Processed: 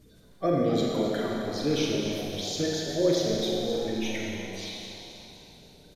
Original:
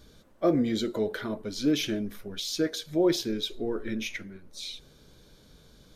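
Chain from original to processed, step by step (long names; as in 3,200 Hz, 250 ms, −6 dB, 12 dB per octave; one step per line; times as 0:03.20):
spectral magnitudes quantised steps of 30 dB
echo with shifted repeats 263 ms, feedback 53%, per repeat +94 Hz, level −11.5 dB
four-comb reverb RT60 2.7 s, combs from 32 ms, DRR −2 dB
level −2.5 dB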